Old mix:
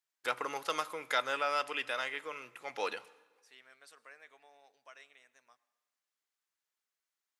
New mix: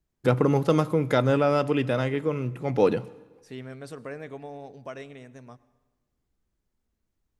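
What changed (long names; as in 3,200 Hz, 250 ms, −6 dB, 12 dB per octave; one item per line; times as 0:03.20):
second voice +8.0 dB
master: remove high-pass filter 1,300 Hz 12 dB per octave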